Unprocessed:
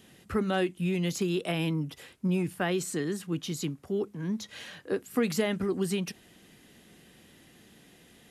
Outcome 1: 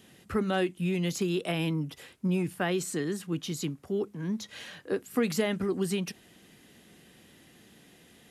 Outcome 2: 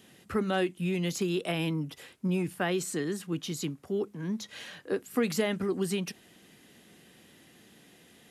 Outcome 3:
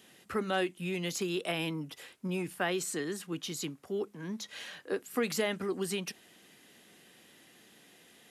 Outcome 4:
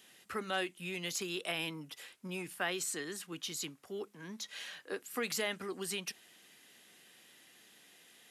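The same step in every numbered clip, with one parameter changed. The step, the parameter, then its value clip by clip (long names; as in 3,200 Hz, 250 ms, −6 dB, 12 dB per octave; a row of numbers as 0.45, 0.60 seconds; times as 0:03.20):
high-pass filter, corner frequency: 45, 120, 440, 1,300 Hertz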